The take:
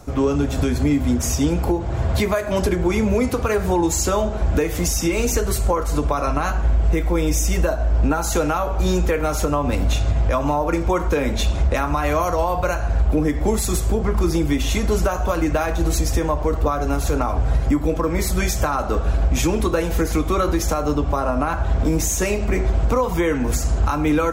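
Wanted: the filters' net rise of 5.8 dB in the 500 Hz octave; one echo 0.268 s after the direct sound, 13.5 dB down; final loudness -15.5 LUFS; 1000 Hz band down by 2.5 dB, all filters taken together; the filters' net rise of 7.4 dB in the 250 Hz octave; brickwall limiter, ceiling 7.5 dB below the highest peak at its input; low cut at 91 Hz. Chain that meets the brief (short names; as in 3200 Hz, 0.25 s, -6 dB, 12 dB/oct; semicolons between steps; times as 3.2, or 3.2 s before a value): HPF 91 Hz; bell 250 Hz +8 dB; bell 500 Hz +6 dB; bell 1000 Hz -6 dB; limiter -10.5 dBFS; echo 0.268 s -13.5 dB; gain +4 dB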